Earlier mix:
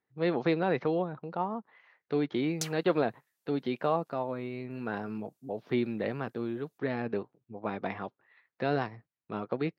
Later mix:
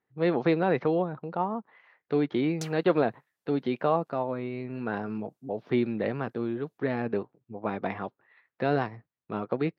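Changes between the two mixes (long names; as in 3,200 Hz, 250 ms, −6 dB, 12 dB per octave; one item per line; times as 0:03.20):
speech +3.5 dB
master: add high-shelf EQ 4,300 Hz −8.5 dB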